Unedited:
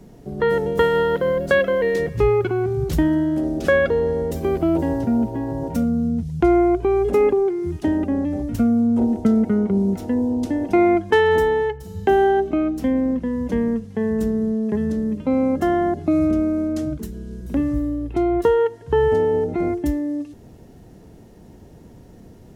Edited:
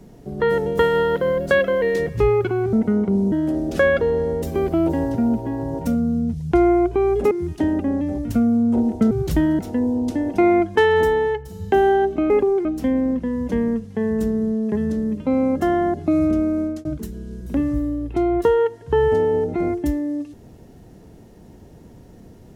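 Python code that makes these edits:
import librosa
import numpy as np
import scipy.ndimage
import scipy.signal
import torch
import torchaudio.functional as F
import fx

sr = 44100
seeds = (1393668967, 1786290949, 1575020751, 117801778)

y = fx.edit(x, sr, fx.swap(start_s=2.73, length_s=0.48, other_s=9.35, other_length_s=0.59),
    fx.move(start_s=7.2, length_s=0.35, to_s=12.65),
    fx.fade_out_span(start_s=16.59, length_s=0.26, curve='qsin'), tone=tone)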